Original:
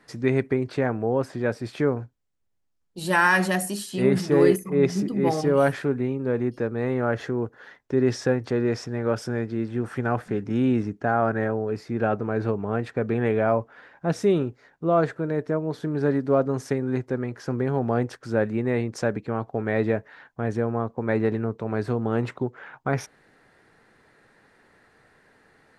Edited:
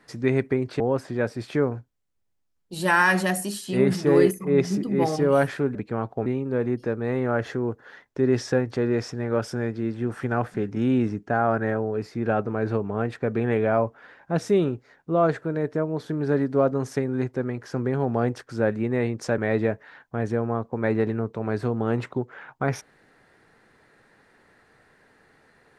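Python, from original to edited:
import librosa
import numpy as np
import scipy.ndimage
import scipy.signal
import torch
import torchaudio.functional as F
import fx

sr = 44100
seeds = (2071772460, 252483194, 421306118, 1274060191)

y = fx.edit(x, sr, fx.cut(start_s=0.8, length_s=0.25),
    fx.move(start_s=19.12, length_s=0.51, to_s=6.0), tone=tone)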